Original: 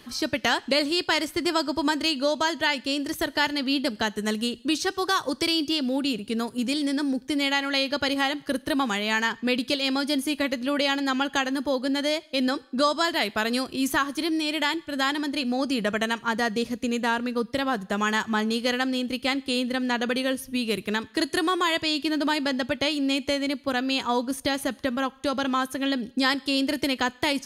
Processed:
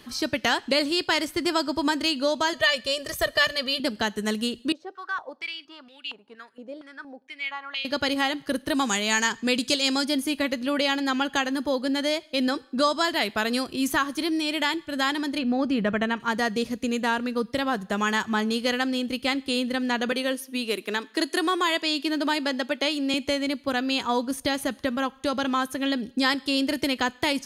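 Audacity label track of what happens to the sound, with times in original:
2.530000	3.800000	comb filter 1.7 ms, depth 89%
4.720000	7.850000	band-pass on a step sequencer 4.3 Hz 570–2,800 Hz
8.740000	10.050000	parametric band 7,200 Hz +13.5 dB 0.86 octaves
15.380000	16.200000	bass and treble bass +5 dB, treble −15 dB
20.120000	23.140000	high-pass filter 250 Hz 24 dB per octave

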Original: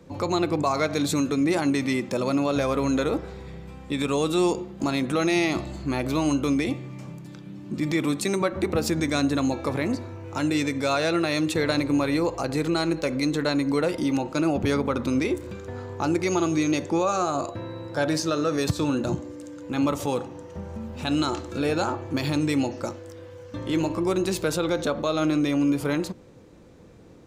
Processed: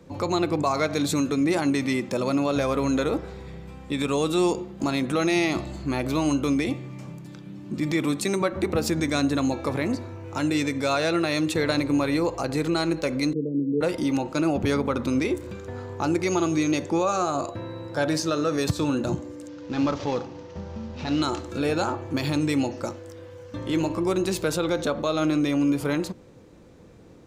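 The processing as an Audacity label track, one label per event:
13.330000	13.810000	Chebyshev band-pass filter 140–470 Hz, order 4
19.480000	21.220000	variable-slope delta modulation 32 kbit/s

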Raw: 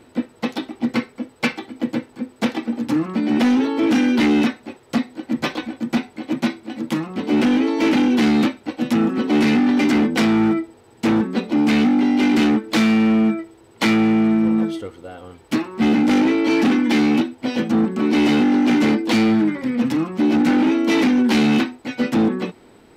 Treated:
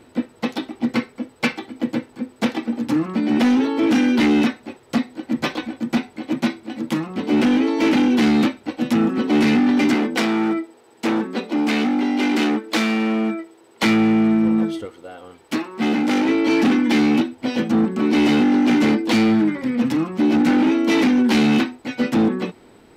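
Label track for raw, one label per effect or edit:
9.940000	13.830000	high-pass filter 280 Hz
14.850000	16.290000	high-pass filter 290 Hz 6 dB per octave

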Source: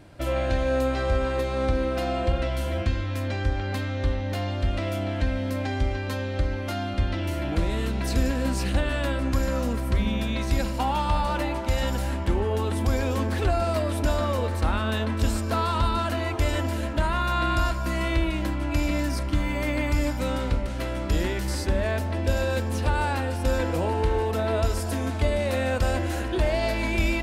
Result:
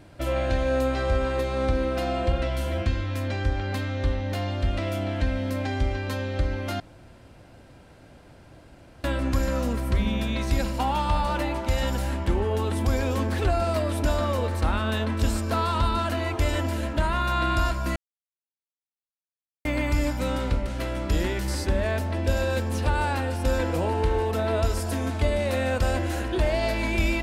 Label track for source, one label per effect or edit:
6.800000	9.040000	fill with room tone
17.960000	19.650000	silence

